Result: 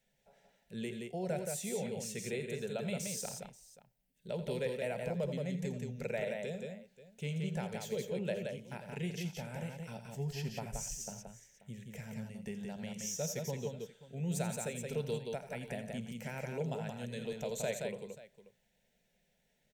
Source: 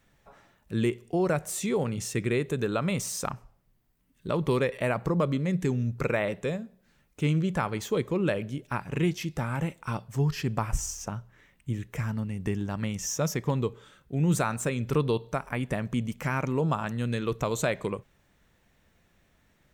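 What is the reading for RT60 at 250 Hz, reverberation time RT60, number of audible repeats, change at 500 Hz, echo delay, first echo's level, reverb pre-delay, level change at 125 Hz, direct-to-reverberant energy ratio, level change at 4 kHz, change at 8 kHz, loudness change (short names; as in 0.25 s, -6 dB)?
none, none, 4, -8.5 dB, 49 ms, -20.0 dB, none, -12.0 dB, none, -7.0 dB, -6.0 dB, -10.0 dB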